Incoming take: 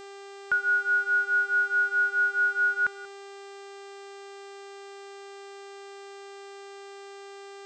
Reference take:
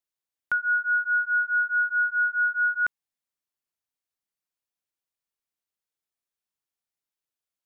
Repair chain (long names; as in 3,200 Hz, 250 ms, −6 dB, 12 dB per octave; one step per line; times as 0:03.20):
hum removal 397 Hz, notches 21
echo removal 186 ms −20.5 dB